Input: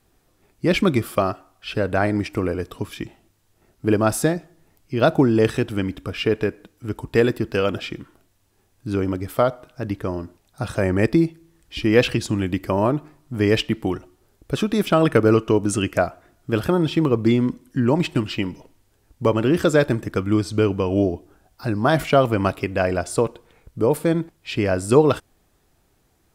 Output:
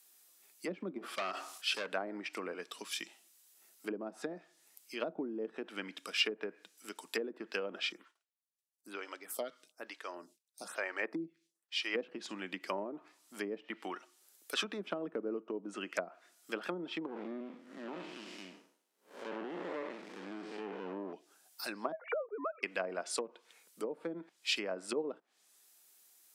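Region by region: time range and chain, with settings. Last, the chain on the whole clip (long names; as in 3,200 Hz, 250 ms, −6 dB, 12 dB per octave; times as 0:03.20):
0:00.98–0:01.87: hard clipping −20.5 dBFS + level that may fall only so fast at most 77 dB per second
0:07.92–0:11.95: downward expander −48 dBFS + high-shelf EQ 10,000 Hz −7.5 dB + phaser with staggered stages 1.1 Hz
0:13.69–0:14.64: high-pass filter 180 Hz 6 dB per octave + dynamic equaliser 1,300 Hz, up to +5 dB, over −47 dBFS, Q 1.2
0:17.06–0:21.13: spectrum smeared in time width 210 ms + high-shelf EQ 2,100 Hz −11.5 dB + windowed peak hold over 17 samples
0:21.92–0:22.63: three sine waves on the formant tracks + low-pass filter 1,700 Hz 24 dB per octave + multiband upward and downward compressor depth 40%
whole clip: elliptic high-pass filter 180 Hz, stop band 40 dB; treble cut that deepens with the level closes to 390 Hz, closed at −15 dBFS; first difference; level +7 dB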